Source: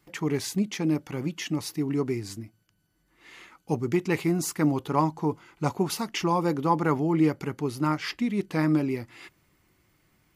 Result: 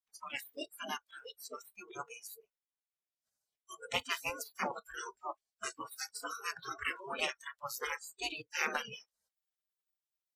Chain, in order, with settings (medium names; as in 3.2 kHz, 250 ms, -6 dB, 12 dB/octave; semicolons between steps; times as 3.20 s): formant shift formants +3 st; spectral gate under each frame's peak -20 dB weak; spectral noise reduction 29 dB; trim +4.5 dB